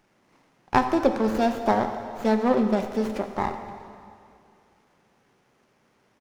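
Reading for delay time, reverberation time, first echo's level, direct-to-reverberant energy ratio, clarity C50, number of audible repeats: 87 ms, 2.4 s, -18.0 dB, 6.5 dB, 7.5 dB, 1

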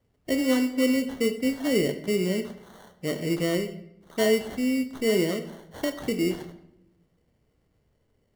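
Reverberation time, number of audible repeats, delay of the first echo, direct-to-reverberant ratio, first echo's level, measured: 0.80 s, none, none, 8.0 dB, none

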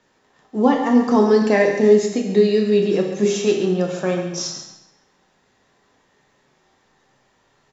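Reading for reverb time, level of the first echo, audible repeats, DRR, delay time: 0.85 s, -10.5 dB, 1, 0.5 dB, 0.138 s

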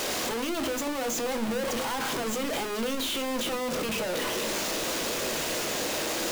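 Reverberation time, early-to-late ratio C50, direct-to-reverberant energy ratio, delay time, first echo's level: 0.40 s, 17.5 dB, 7.0 dB, none, none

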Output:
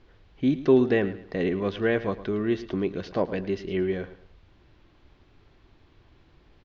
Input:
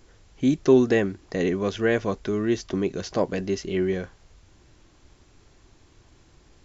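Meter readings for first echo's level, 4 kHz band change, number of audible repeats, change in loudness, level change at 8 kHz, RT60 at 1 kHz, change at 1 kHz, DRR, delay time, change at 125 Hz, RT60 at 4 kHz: -15.0 dB, -4.0 dB, 3, -2.0 dB, n/a, none, -2.0 dB, none, 0.11 s, -2.0 dB, none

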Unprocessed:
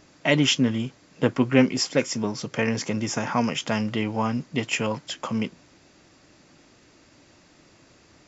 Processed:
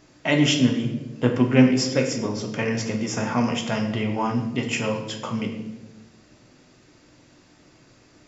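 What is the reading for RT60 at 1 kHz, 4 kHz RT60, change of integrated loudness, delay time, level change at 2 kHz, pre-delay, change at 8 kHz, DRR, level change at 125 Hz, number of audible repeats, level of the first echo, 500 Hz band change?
0.90 s, 0.75 s, +1.5 dB, none, 0.0 dB, 8 ms, n/a, 2.5 dB, +3.5 dB, none, none, +1.0 dB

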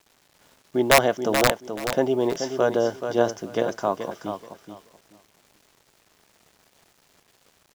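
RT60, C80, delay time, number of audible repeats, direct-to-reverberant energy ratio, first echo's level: none, none, 0.43 s, 2, none, -8.0 dB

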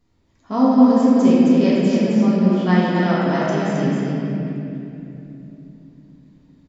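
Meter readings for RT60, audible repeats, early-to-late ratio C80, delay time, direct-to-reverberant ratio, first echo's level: 2.9 s, 1, -4.0 dB, 0.265 s, -9.0 dB, -3.5 dB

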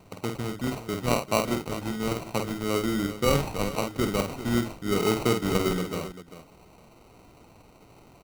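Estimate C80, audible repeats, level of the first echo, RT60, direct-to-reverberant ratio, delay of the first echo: none, 2, -5.5 dB, none, none, 50 ms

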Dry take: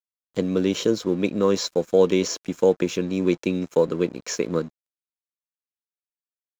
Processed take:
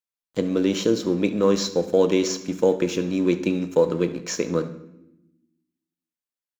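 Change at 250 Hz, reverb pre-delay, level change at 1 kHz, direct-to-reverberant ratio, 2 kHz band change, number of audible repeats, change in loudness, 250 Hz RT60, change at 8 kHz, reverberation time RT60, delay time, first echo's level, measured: +1.5 dB, 3 ms, +0.5 dB, 9.0 dB, +0.5 dB, 1, +0.5 dB, 1.5 s, n/a, 0.90 s, 70 ms, -18.5 dB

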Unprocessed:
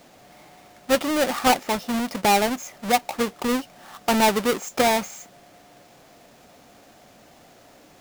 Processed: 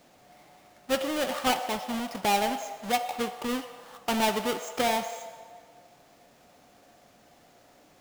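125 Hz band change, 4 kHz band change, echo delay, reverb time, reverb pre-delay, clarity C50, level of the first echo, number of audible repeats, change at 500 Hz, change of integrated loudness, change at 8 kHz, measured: -7.5 dB, -4.5 dB, none, 1.7 s, 5 ms, 9.0 dB, none, none, -6.5 dB, -6.5 dB, -7.0 dB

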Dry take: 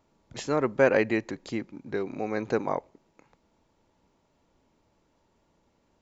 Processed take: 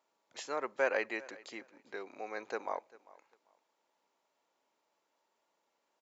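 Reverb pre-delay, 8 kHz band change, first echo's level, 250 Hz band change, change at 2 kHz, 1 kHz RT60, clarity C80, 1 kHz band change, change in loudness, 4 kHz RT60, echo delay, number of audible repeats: none, n/a, -21.5 dB, -18.5 dB, -6.0 dB, none, none, -7.0 dB, -10.0 dB, none, 0.396 s, 1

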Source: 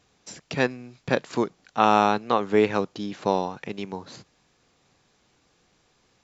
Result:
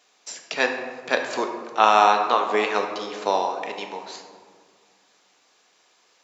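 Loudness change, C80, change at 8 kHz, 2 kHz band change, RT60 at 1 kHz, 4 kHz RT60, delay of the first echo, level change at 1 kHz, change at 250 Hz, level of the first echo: +2.5 dB, 7.5 dB, n/a, +5.0 dB, 1.7 s, 0.85 s, none, +4.5 dB, -7.0 dB, none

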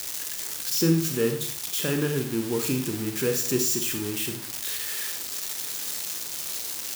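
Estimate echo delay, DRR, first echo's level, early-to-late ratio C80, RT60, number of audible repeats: none, 4.0 dB, none, 11.0 dB, 0.55 s, none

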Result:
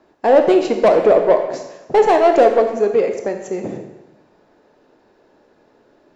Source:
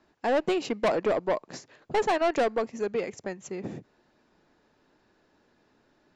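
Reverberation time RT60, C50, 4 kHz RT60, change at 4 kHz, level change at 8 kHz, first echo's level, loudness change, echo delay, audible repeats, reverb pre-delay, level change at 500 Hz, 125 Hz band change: 1.0 s, 6.5 dB, 0.95 s, +5.5 dB, n/a, none, +13.5 dB, none, none, 19 ms, +14.5 dB, +7.5 dB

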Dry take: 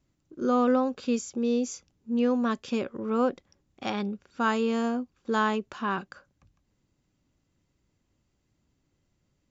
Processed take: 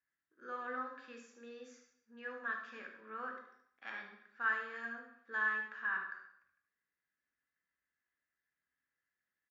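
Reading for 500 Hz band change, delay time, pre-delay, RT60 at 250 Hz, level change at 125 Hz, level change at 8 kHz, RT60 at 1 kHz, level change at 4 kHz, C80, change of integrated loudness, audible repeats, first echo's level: -22.0 dB, 74 ms, 3 ms, 0.70 s, under -25 dB, n/a, 0.70 s, -18.5 dB, 9.0 dB, -11.5 dB, 1, -9.0 dB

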